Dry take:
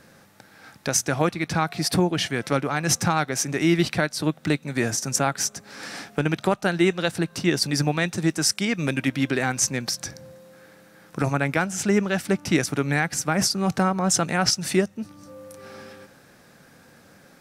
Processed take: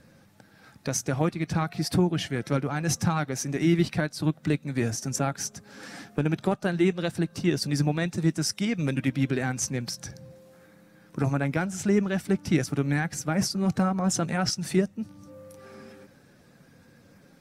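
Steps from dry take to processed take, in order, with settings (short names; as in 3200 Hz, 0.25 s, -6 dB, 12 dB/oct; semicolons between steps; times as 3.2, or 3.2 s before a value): bin magnitudes rounded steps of 15 dB; low shelf 350 Hz +8.5 dB; gain -7 dB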